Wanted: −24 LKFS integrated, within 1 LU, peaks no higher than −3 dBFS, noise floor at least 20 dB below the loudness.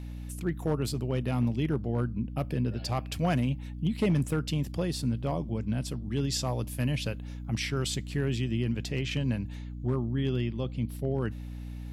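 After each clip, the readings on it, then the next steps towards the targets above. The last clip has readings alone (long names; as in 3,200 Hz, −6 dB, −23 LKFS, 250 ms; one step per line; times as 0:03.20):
share of clipped samples 0.4%; peaks flattened at −19.5 dBFS; mains hum 60 Hz; hum harmonics up to 300 Hz; level of the hum −36 dBFS; integrated loudness −31.0 LKFS; sample peak −19.5 dBFS; target loudness −24.0 LKFS
→ clipped peaks rebuilt −19.5 dBFS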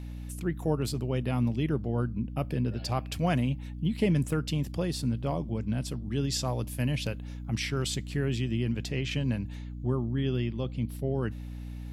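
share of clipped samples 0.0%; mains hum 60 Hz; hum harmonics up to 300 Hz; level of the hum −36 dBFS
→ hum removal 60 Hz, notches 5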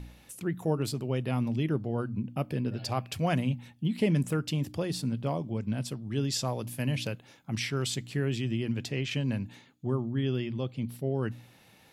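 mains hum none found; integrated loudness −31.5 LKFS; sample peak −15.0 dBFS; target loudness −24.0 LKFS
→ level +7.5 dB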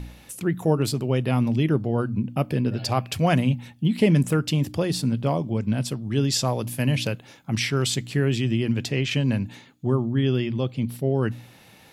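integrated loudness −24.0 LKFS; sample peak −7.5 dBFS; background noise floor −52 dBFS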